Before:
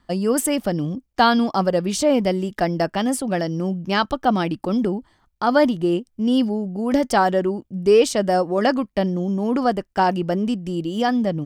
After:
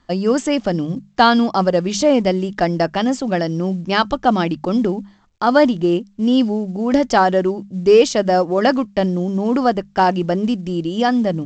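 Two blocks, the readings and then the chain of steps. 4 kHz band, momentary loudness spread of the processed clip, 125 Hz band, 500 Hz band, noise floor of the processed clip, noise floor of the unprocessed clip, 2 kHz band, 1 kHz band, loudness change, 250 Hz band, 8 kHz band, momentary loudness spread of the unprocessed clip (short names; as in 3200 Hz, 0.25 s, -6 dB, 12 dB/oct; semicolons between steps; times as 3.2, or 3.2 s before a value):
+3.5 dB, 7 LU, +3.0 dB, +3.5 dB, -52 dBFS, -66 dBFS, +3.5 dB, +3.5 dB, +3.5 dB, +3.0 dB, -1.5 dB, 7 LU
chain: notches 50/100/150/200 Hz; gain +3.5 dB; A-law 128 kbps 16000 Hz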